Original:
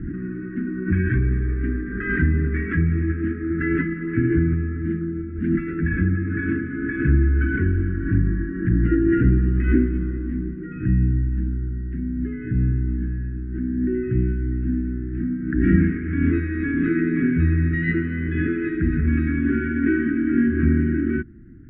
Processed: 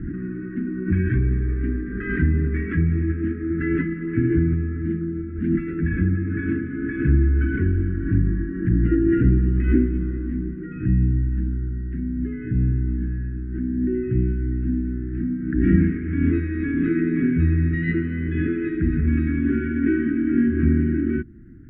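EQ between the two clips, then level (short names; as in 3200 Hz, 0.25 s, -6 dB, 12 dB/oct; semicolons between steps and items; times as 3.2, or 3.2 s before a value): dynamic EQ 1500 Hz, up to -5 dB, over -43 dBFS, Q 1.2; 0.0 dB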